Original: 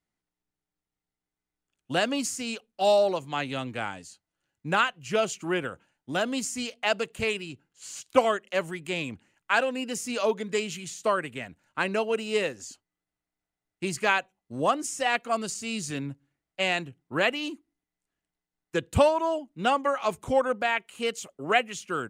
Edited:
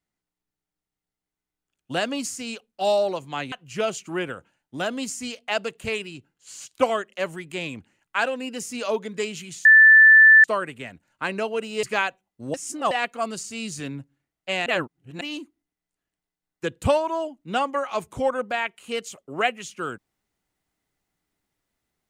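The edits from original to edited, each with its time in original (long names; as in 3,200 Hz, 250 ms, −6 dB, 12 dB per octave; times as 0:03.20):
0:03.52–0:04.87: remove
0:11.00: insert tone 1,760 Hz −8 dBFS 0.79 s
0:12.39–0:13.94: remove
0:14.65–0:15.02: reverse
0:16.77–0:17.32: reverse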